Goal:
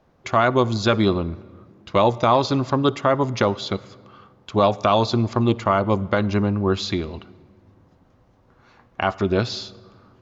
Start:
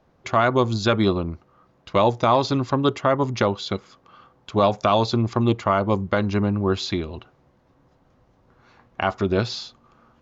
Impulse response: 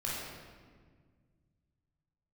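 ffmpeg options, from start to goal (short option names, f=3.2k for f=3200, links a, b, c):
-filter_complex "[0:a]asplit=2[a][b];[1:a]atrim=start_sample=2205,adelay=56[c];[b][c]afir=irnorm=-1:irlink=0,volume=-25.5dB[d];[a][d]amix=inputs=2:normalize=0,volume=1dB"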